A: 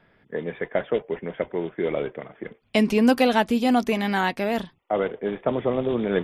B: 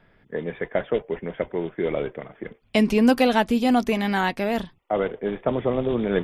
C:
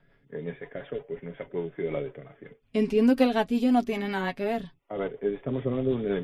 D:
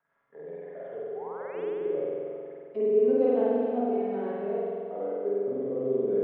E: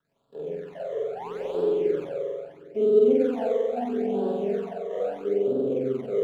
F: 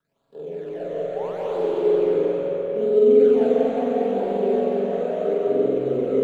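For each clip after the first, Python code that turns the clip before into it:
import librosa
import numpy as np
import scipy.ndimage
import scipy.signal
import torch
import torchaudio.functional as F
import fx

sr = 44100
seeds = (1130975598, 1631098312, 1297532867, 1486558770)

y1 = fx.low_shelf(x, sr, hz=65.0, db=11.5)
y2 = fx.hpss(y1, sr, part='percussive', gain_db=-9)
y2 = y2 + 0.48 * np.pad(y2, (int(7.2 * sr / 1000.0), 0))[:len(y2)]
y2 = fx.rotary(y2, sr, hz=5.5)
y2 = y2 * librosa.db_to_amplitude(-1.5)
y3 = fx.spec_paint(y2, sr, seeds[0], shape='rise', start_s=1.15, length_s=0.48, low_hz=710.0, high_hz=3600.0, level_db=-37.0)
y3 = fx.auto_wah(y3, sr, base_hz=440.0, top_hz=1100.0, q=2.5, full_db=-27.5, direction='down')
y3 = fx.rev_spring(y3, sr, rt60_s=2.3, pass_ms=(45,), chirp_ms=75, drr_db=-7.5)
y3 = y3 * librosa.db_to_amplitude(-4.0)
y4 = scipy.ndimage.median_filter(y3, 25, mode='constant')
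y4 = fx.rider(y4, sr, range_db=4, speed_s=2.0)
y4 = fx.phaser_stages(y4, sr, stages=12, low_hz=250.0, high_hz=2100.0, hz=0.76, feedback_pct=20)
y4 = y4 * librosa.db_to_amplitude(5.0)
y5 = fx.rev_freeverb(y4, sr, rt60_s=4.1, hf_ratio=0.65, predelay_ms=115, drr_db=-4.0)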